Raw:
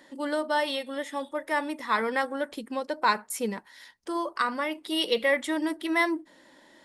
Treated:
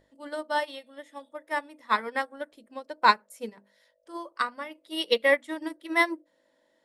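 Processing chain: buzz 50 Hz, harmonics 13, -48 dBFS -2 dB/oct; notches 50/100/150/200/250/300/350/400/450 Hz; upward expander 2.5:1, over -34 dBFS; gain +5.5 dB

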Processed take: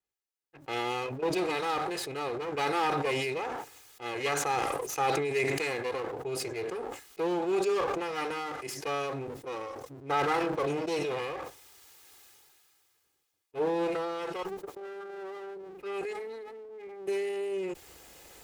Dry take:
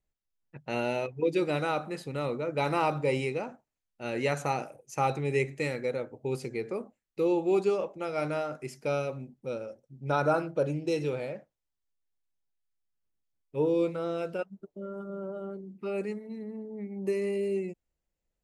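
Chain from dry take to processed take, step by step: minimum comb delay 2.4 ms; HPF 65 Hz; low shelf 260 Hz -11 dB; sustainer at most 22 dB/s

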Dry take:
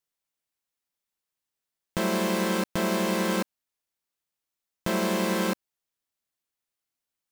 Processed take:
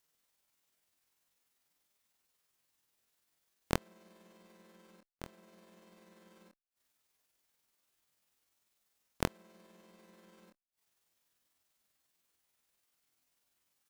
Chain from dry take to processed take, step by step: one diode to ground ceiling -17 dBFS; in parallel at -1 dB: limiter -22 dBFS, peak gain reduction 8 dB; on the sum: flipped gate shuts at -20 dBFS, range -41 dB; granular stretch 1.9×, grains 98 ms; gain +3.5 dB

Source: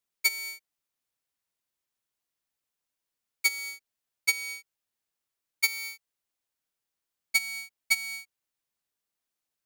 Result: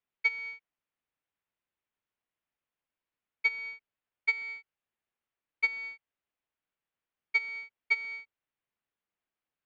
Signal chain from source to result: LPF 3000 Hz 24 dB/oct

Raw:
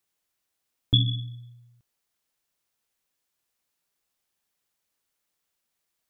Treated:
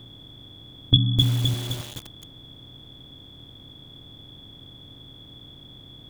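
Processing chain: per-bin compression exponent 0.4; 0.96–1.54 speaker cabinet 150–2400 Hz, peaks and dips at 160 Hz +8 dB, 310 Hz -9 dB, 850 Hz +6 dB, 1300 Hz +6 dB; lo-fi delay 0.258 s, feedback 55%, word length 6-bit, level -3 dB; gain +3.5 dB

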